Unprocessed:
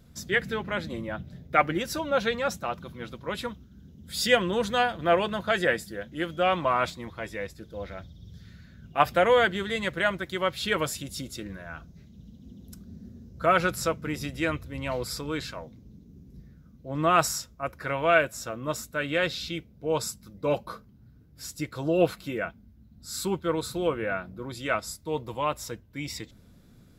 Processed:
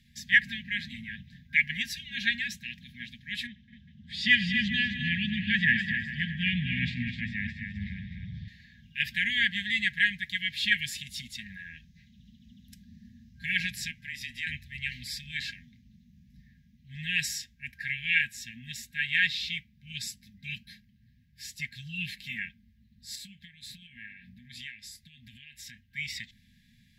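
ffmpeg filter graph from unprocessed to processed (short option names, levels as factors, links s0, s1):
-filter_complex "[0:a]asettb=1/sr,asplit=3[s0][s1][s2];[s0]atrim=end=3.474[s3];[s1]atrim=start=3.47:end=8.48,asetpts=PTS-STARTPTS,afade=t=in:d=0.004:c=qsin,afade=t=out:st=5.006:d=0.004:c=qsin,highpass=100,lowpass=3700,asubboost=boost=12:cutoff=210,aecho=1:1:88|207|256|402|625:0.133|0.2|0.422|0.158|0.1,atrim=end_sample=220941[s4];[s2]atrim=start=8.476[s5];[s3][s4]acrossfade=d=0.004:c1=hsin:c2=qsin[s6];[s6][s5]acrossfade=d=0.004:c1=qsin:c2=hsin,asettb=1/sr,asplit=3[s7][s8][s9];[s7]atrim=end=13.914[s10];[s8]atrim=start=13.91:end=14.47,asetpts=PTS-STARTPTS,afade=t=in:d=0.004:c=qsin,afade=t=out:st=0.556:d=0.004:c=qsin,lowshelf=f=180:g=-9.5,afreqshift=-26,acompressor=threshold=0.02:ratio=3:attack=3.2:release=140:knee=1:detection=peak[s11];[s9]atrim=start=14.466[s12];[s10][s11]acrossfade=d=0.004:c1=hsin:c2=qsin[s13];[s13][s12]acrossfade=d=0.004:c1=qsin:c2=hsin,asettb=1/sr,asplit=3[s14][s15][s16];[s14]atrim=end=23.154[s17];[s15]atrim=start=23.15:end=25.84,asetpts=PTS-STARTPTS,afade=t=in:d=0.004:c=qsin,afade=t=out:st=2.686:d=0.004:c=qsin,asplit=2[s18][s19];[s19]adelay=29,volume=0.2[s20];[s18][s20]amix=inputs=2:normalize=0,atrim=end_sample=118629,acompressor=threshold=0.0141:ratio=12:attack=3.2:release=140:knee=1:detection=peak[s21];[s16]atrim=start=25.836[s22];[s17][s21]acrossfade=d=0.004:c1=hsin:c2=qsin[s23];[s23][s22]acrossfade=d=0.004:c1=qsin:c2=hsin,afftfilt=real='re*(1-between(b*sr/4096,250,1600))':imag='im*(1-between(b*sr/4096,250,1600))':win_size=4096:overlap=0.75,acrossover=split=420 3900:gain=0.178 1 0.224[s24][s25][s26];[s24][s25][s26]amix=inputs=3:normalize=0,acontrast=31,volume=1.12"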